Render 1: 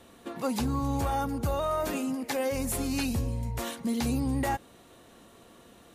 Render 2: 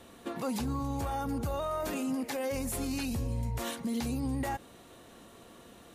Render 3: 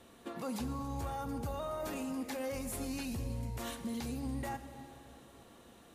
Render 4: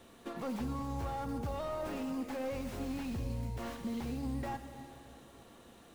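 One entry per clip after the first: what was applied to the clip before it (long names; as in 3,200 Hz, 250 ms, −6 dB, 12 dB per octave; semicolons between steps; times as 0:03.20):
brickwall limiter −27 dBFS, peak gain reduction 7.5 dB; level +1 dB
dense smooth reverb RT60 3 s, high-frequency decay 0.85×, DRR 9 dB; level −5.5 dB
stylus tracing distortion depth 0.5 ms; slew-rate limiting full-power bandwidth 15 Hz; level +1 dB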